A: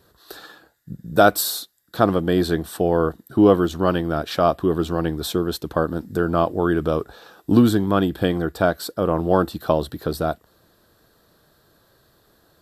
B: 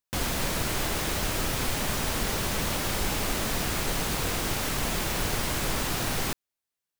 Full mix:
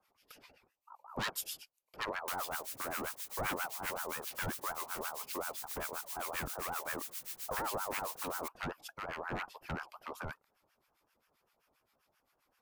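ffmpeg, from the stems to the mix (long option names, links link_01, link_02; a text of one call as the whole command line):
ffmpeg -i stem1.wav -i stem2.wav -filter_complex "[0:a]aeval=exprs='0.224*(abs(mod(val(0)/0.224+3,4)-2)-1)':channel_layout=same,aeval=exprs='val(0)*sin(2*PI*940*n/s+940*0.25/5.5*sin(2*PI*5.5*n/s))':channel_layout=same,volume=-10.5dB[link_01];[1:a]aderivative,acrossover=split=250[link_02][link_03];[link_03]acompressor=threshold=-34dB:ratio=6[link_04];[link_02][link_04]amix=inputs=2:normalize=0,adelay=2150,volume=-3.5dB[link_05];[link_01][link_05]amix=inputs=2:normalize=0,acrossover=split=1000[link_06][link_07];[link_06]aeval=exprs='val(0)*(1-1/2+1/2*cos(2*PI*7.6*n/s))':channel_layout=same[link_08];[link_07]aeval=exprs='val(0)*(1-1/2-1/2*cos(2*PI*7.6*n/s))':channel_layout=same[link_09];[link_08][link_09]amix=inputs=2:normalize=0" out.wav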